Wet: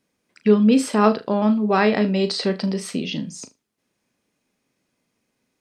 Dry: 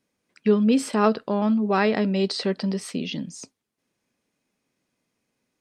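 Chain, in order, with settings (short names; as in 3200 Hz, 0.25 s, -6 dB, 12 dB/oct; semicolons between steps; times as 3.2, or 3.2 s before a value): flutter echo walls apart 6.5 m, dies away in 0.21 s; gain +3 dB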